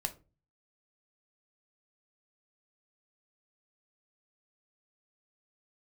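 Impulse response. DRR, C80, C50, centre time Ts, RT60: 6.5 dB, 23.0 dB, 16.5 dB, 6 ms, 0.30 s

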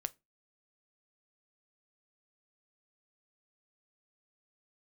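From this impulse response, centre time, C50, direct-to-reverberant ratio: 2 ms, 27.0 dB, 12.5 dB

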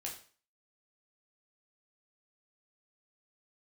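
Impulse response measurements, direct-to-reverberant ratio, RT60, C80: −2.0 dB, 0.40 s, 12.0 dB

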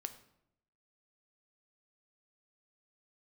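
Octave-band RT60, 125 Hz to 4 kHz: 0.95, 0.90, 0.85, 0.70, 0.65, 0.55 seconds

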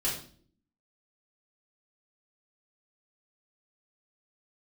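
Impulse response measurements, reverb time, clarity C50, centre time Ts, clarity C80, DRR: non-exponential decay, 5.0 dB, 34 ms, 10.0 dB, −7.5 dB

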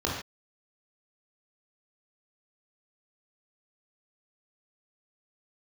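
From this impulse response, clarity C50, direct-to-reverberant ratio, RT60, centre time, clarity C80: 2.5 dB, −3.5 dB, non-exponential decay, 46 ms, 6.0 dB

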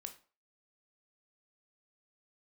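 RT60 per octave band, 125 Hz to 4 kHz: 0.35, 0.35, 0.40, 0.40, 0.35, 0.30 seconds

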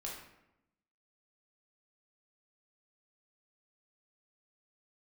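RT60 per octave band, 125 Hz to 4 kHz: 1.1, 1.1, 0.90, 0.85, 0.75, 0.55 seconds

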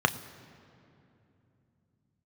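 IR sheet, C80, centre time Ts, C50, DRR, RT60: 15.5 dB, 10 ms, 15.0 dB, 9.0 dB, 2.9 s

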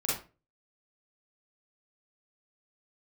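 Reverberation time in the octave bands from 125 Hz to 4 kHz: 0.45, 0.40, 0.35, 0.30, 0.30, 0.25 seconds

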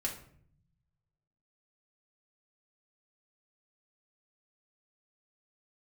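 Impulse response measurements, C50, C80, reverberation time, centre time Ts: 8.5 dB, 12.5 dB, 0.60 s, 20 ms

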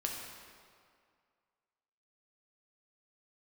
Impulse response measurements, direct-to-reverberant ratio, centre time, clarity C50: −1.0 dB, 81 ms, 2.0 dB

